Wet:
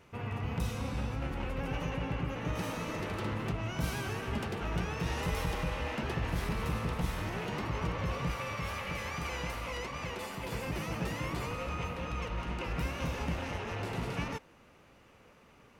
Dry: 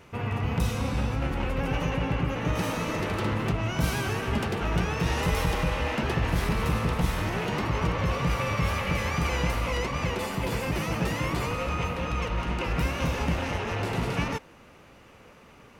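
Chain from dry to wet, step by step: 8.31–10.52 low shelf 390 Hz -5.5 dB; gain -7.5 dB

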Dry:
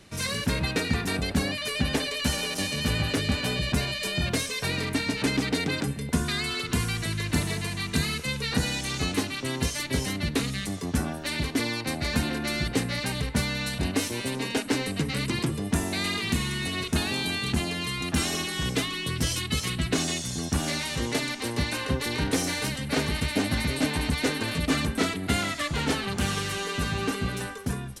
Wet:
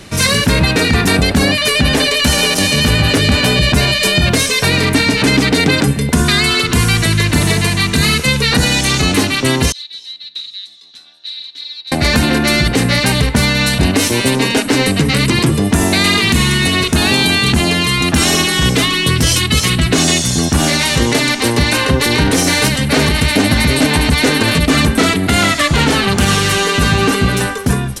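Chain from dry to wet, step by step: 9.72–11.92 band-pass 3900 Hz, Q 19; maximiser +18 dB; gain -1 dB

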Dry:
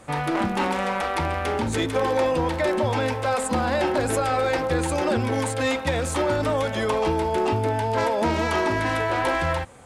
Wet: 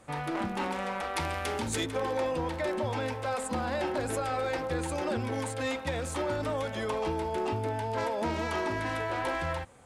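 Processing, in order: 1.15–1.84 high shelf 2500 Hz -> 3600 Hz +10.5 dB; gain -8.5 dB

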